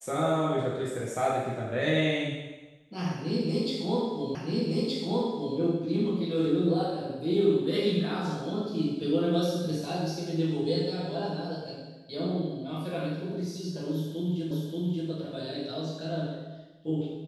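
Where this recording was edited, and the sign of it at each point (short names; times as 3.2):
4.35 repeat of the last 1.22 s
14.51 repeat of the last 0.58 s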